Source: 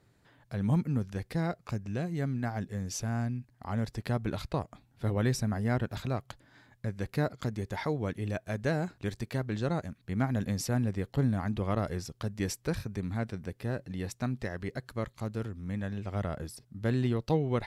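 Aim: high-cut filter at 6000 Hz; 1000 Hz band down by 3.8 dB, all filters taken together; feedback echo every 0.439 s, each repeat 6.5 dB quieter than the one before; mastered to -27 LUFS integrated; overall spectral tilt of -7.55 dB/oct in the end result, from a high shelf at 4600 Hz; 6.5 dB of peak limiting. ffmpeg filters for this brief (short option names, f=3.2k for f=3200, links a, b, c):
-af "lowpass=6k,equalizer=f=1k:t=o:g=-5,highshelf=f=4.6k:g=-8.5,alimiter=limit=-23.5dB:level=0:latency=1,aecho=1:1:439|878|1317|1756|2195|2634:0.473|0.222|0.105|0.0491|0.0231|0.0109,volume=7.5dB"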